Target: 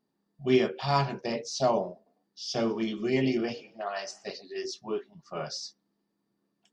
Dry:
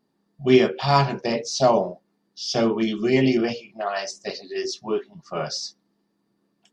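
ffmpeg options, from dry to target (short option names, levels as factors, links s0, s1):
-filter_complex "[0:a]asettb=1/sr,asplit=3[s0][s1][s2];[s0]atrim=end=1.864[s3];[s1]atrim=start=1.86:end=4.29,asetpts=PTS-STARTPTS,afade=t=in:d=0.004:c=qsin,afade=t=out:st=2.426:d=0.004:c=qsin,asplit=4[s4][s5][s6][s7];[s5]adelay=100,afreqshift=38,volume=0.0708[s8];[s6]adelay=200,afreqshift=76,volume=0.0363[s9];[s7]adelay=300,afreqshift=114,volume=0.0184[s10];[s4][s8][s9][s10]amix=inputs=4:normalize=0,atrim=end_sample=107163[s11];[s2]atrim=start=4.286[s12];[s3][s11]acrossfade=d=0.004:c1=hsin:c2=qsin[s13];[s13][s12]acrossfade=d=0.004:c1=qsin:c2=hsin,volume=0.422"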